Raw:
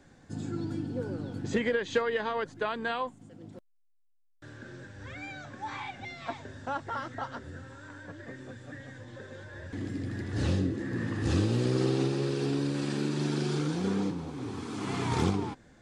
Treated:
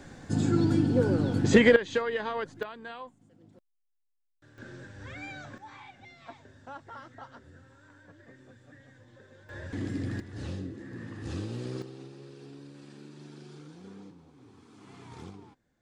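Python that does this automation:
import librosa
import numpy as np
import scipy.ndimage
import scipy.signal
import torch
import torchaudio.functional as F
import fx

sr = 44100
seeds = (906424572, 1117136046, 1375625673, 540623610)

y = fx.gain(x, sr, db=fx.steps((0.0, 10.0), (1.76, -1.0), (2.63, -10.0), (4.58, 0.0), (5.58, -10.0), (9.49, 2.0), (10.2, -9.0), (11.82, -18.0)))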